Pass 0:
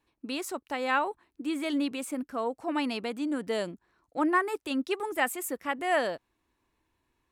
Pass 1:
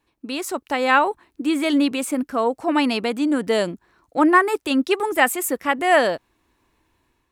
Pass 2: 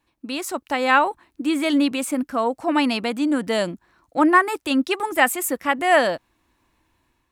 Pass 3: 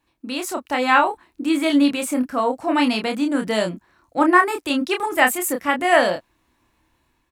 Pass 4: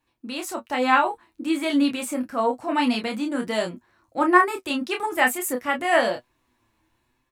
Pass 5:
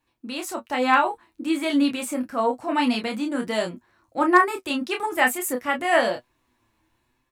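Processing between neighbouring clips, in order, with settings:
AGC gain up to 5.5 dB; gain +5 dB
bell 420 Hz -7.5 dB 0.27 oct
doubler 28 ms -5 dB
flange 1.1 Hz, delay 7.6 ms, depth 1.8 ms, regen +45%
hard clip -6.5 dBFS, distortion -34 dB

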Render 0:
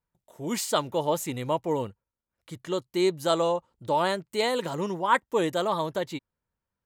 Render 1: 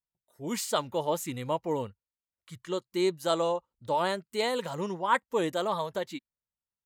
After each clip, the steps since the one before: spectral noise reduction 13 dB; gain -3 dB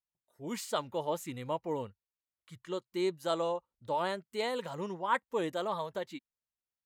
tone controls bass -1 dB, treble -4 dB; gain -4.5 dB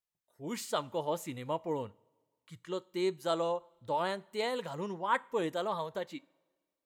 two-slope reverb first 0.37 s, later 1.6 s, from -17 dB, DRR 18.5 dB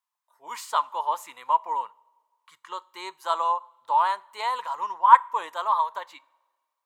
resonant high-pass 1000 Hz, resonance Q 7.7; gain +2 dB

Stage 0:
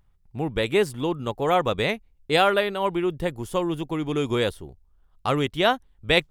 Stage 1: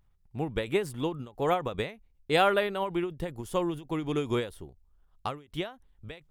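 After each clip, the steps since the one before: dynamic EQ 4900 Hz, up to -4 dB, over -39 dBFS, Q 0.93; ending taper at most 160 dB/s; gain -3.5 dB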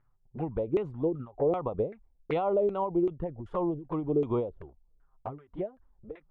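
LFO low-pass saw down 2.6 Hz 380–1700 Hz; limiter -17.5 dBFS, peak gain reduction 9 dB; envelope flanger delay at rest 8.4 ms, full sweep at -25.5 dBFS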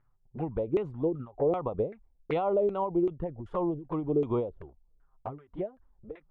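nothing audible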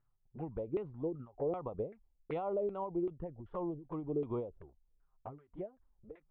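air absorption 250 m; gain -8 dB

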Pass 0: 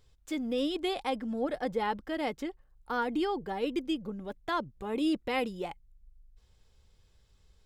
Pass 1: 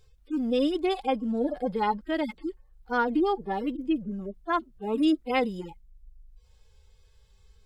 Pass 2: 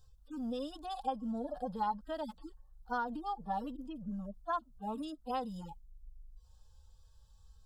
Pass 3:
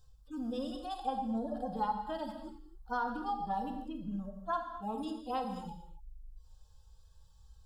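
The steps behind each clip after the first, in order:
median-filter separation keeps harmonic; gain +6 dB
compressor, threshold -27 dBFS, peak gain reduction 8 dB; fixed phaser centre 910 Hz, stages 4; gain -1.5 dB
reverb, pre-delay 13 ms, DRR 4 dB

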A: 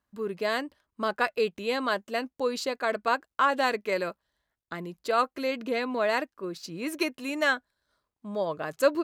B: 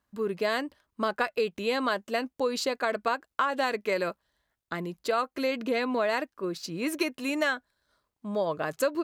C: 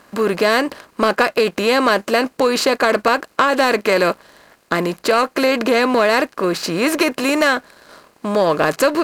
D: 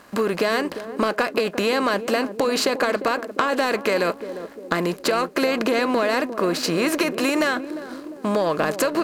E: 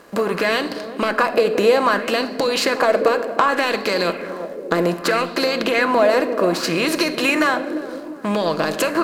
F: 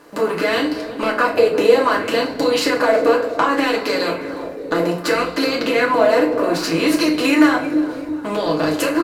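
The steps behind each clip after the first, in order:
compressor 6:1, threshold -26 dBFS, peak gain reduction 10 dB; gain +3 dB
per-bin compression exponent 0.6; sample leveller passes 1; gain +6 dB
compressor, threshold -18 dBFS, peak gain reduction 8 dB; narrowing echo 0.351 s, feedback 60%, band-pass 320 Hz, level -9.5 dB
reverb RT60 1.7 s, pre-delay 6 ms, DRR 8 dB; LFO bell 0.64 Hz 430–4700 Hz +9 dB
frequency-shifting echo 0.358 s, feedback 49%, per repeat -110 Hz, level -21.5 dB; FDN reverb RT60 0.36 s, low-frequency decay 1.1×, high-frequency decay 0.8×, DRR -2.5 dB; gain -4 dB

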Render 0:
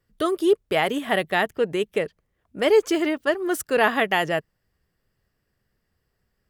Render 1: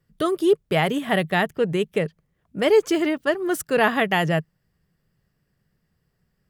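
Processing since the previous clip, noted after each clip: bell 160 Hz +12 dB 0.66 oct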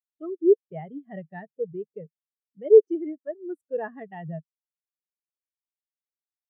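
spectral expander 2.5:1; gain +1 dB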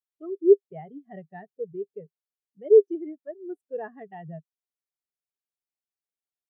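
small resonant body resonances 400/730 Hz, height 8 dB, ringing for 55 ms; gain -5 dB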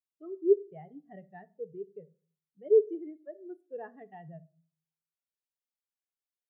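shoebox room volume 260 m³, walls furnished, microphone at 0.34 m; gain -7 dB

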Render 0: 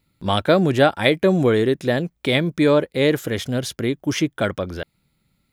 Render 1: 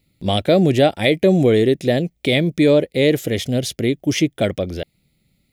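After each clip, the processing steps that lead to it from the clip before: band shelf 1200 Hz -12 dB 1.1 oct; in parallel at +2.5 dB: limiter -9.5 dBFS, peak gain reduction 8 dB; on the sum: gain -4 dB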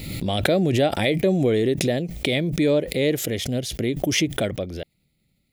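backwards sustainer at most 44 dB/s; gain -6 dB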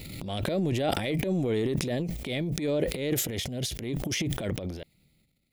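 transient shaper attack -11 dB, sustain +11 dB; gain -7.5 dB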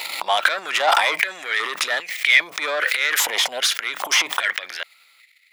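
overdrive pedal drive 24 dB, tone 5000 Hz, clips at -7 dBFS; stepped high-pass 2.5 Hz 930–1900 Hz; gain +1 dB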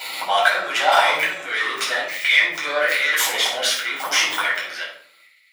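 shoebox room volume 760 m³, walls furnished, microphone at 7.6 m; gain -8 dB

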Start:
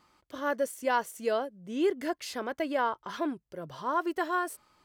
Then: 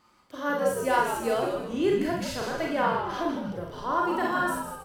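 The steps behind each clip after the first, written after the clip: on a send: frequency-shifting echo 0.157 s, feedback 43%, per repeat -96 Hz, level -6.5 dB; on the sum: Schroeder reverb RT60 0.39 s, combs from 31 ms, DRR -0.5 dB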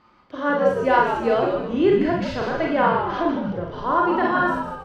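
air absorption 230 m; gain +7.5 dB

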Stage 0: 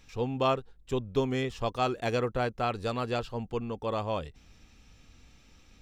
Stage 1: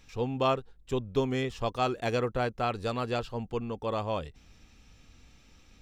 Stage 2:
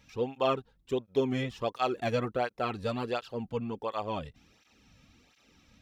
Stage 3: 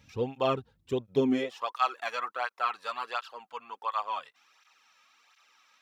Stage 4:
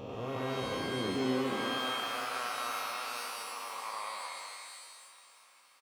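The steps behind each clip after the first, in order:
nothing audible
bell 7800 Hz -4.5 dB 0.69 oct; tape flanging out of phase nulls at 1.4 Hz, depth 2.9 ms; gain +1.5 dB
high-pass sweep 79 Hz -> 1100 Hz, 1.03–1.67
time blur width 0.671 s; feedback echo 0.466 s, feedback 54%, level -17.5 dB; shimmer reverb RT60 1.3 s, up +12 st, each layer -2 dB, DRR 4.5 dB

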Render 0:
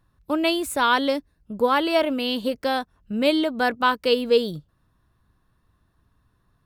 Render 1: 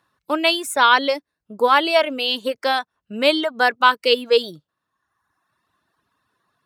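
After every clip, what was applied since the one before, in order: weighting filter A; reverb removal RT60 1.1 s; gain +6 dB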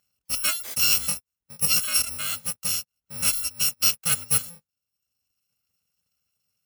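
FFT order left unsorted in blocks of 128 samples; gain -6.5 dB

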